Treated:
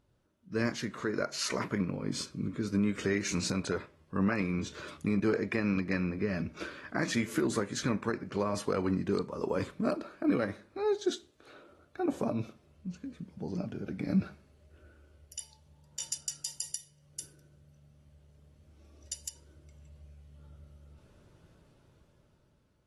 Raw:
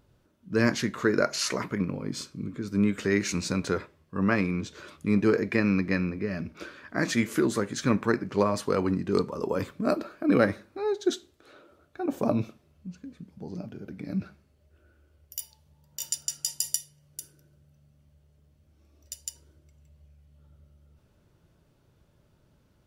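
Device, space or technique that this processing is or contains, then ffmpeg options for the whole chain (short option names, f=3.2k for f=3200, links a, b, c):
low-bitrate web radio: -af "dynaudnorm=f=410:g=7:m=12.5dB,alimiter=limit=-11dB:level=0:latency=1:release=404,volume=-8dB" -ar 32000 -c:a aac -b:a 32k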